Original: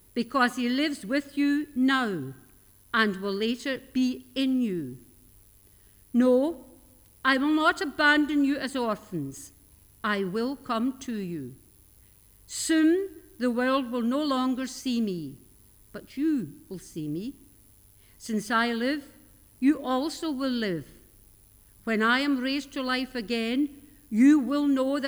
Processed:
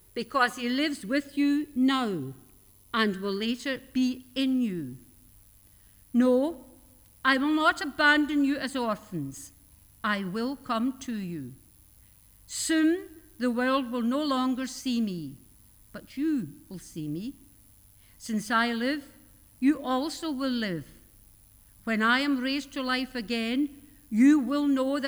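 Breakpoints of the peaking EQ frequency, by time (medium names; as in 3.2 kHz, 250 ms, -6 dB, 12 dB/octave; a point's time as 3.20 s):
peaking EQ -14.5 dB 0.23 oct
0.60 s 250 Hz
1.44 s 1.6 kHz
2.98 s 1.6 kHz
3.49 s 400 Hz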